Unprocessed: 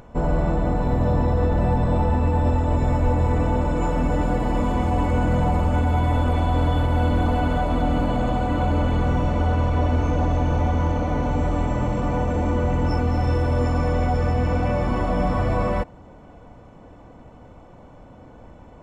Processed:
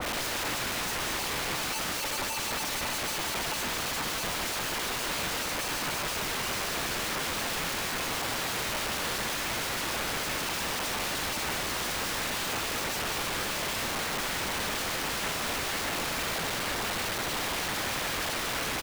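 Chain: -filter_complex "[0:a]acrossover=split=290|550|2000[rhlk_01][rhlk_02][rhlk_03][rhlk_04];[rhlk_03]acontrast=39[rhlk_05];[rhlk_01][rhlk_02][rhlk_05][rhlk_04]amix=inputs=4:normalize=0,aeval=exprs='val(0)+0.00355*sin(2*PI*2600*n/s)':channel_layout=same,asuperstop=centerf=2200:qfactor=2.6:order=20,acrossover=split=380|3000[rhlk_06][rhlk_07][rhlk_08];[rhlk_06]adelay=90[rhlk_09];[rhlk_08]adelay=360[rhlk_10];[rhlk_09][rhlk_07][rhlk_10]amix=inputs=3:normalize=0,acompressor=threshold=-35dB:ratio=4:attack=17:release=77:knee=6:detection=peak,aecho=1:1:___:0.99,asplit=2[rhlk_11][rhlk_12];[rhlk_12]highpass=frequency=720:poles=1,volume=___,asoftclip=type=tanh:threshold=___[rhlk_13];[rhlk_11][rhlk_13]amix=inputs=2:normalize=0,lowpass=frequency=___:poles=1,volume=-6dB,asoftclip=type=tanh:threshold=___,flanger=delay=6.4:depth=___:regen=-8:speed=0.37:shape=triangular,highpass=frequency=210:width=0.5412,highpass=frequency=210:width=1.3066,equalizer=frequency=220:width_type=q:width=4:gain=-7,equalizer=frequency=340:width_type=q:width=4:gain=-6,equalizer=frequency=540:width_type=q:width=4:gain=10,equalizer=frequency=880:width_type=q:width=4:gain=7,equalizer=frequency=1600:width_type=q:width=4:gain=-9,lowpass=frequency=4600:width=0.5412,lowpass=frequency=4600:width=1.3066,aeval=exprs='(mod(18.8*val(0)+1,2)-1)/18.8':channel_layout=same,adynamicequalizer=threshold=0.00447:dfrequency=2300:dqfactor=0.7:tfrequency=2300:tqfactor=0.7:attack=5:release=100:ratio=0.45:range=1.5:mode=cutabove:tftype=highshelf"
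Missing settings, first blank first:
3.3, 34dB, -17dB, 2500, -19dB, 9.1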